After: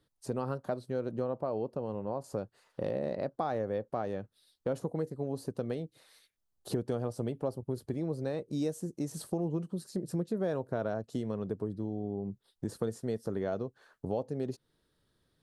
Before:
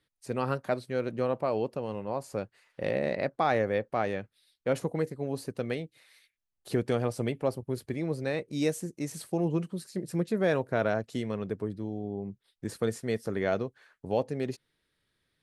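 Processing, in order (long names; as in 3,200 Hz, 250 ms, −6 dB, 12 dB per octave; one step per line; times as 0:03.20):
high-shelf EQ 3,700 Hz −6 dB, from 0:01.24 −11.5 dB, from 0:02.24 −5 dB
downward compressor 2.5 to 1, threshold −40 dBFS, peak gain reduction 12 dB
parametric band 2,200 Hz −13 dB 0.95 octaves
level +6 dB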